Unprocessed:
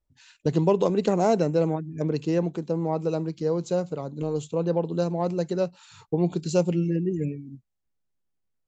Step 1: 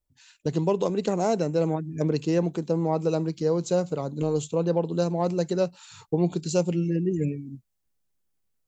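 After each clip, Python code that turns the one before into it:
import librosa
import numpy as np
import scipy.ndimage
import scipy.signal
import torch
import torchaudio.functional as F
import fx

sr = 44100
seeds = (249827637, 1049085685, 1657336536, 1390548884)

y = fx.high_shelf(x, sr, hz=6000.0, db=8.0)
y = fx.rider(y, sr, range_db=3, speed_s=0.5)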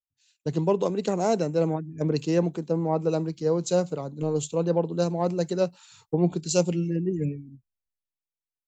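y = fx.band_widen(x, sr, depth_pct=70)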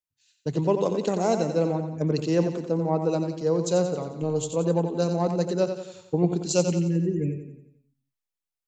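y = fx.echo_feedback(x, sr, ms=89, feedback_pct=50, wet_db=-8.0)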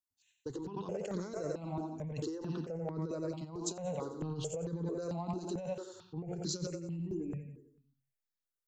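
y = fx.over_compress(x, sr, threshold_db=-28.0, ratio=-1.0)
y = fx.phaser_held(y, sr, hz=4.5, low_hz=510.0, high_hz=2700.0)
y = F.gain(torch.from_numpy(y), -6.5).numpy()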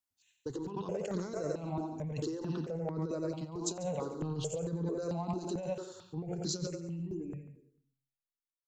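y = fx.fade_out_tail(x, sr, length_s=2.28)
y = y + 10.0 ** (-17.0 / 20.0) * np.pad(y, (int(142 * sr / 1000.0), 0))[:len(y)]
y = F.gain(torch.from_numpy(y), 2.0).numpy()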